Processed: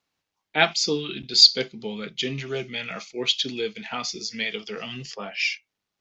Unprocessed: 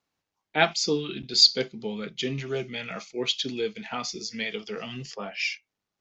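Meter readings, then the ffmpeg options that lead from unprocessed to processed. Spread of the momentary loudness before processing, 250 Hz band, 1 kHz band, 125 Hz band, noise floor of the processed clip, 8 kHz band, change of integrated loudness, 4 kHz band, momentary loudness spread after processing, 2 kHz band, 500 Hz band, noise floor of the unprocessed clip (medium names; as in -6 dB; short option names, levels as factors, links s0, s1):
17 LU, 0.0 dB, +1.0 dB, 0.0 dB, -84 dBFS, no reading, +3.5 dB, +4.0 dB, 19 LU, +3.5 dB, +0.5 dB, under -85 dBFS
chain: -af "equalizer=f=3300:t=o:w=2.1:g=4.5"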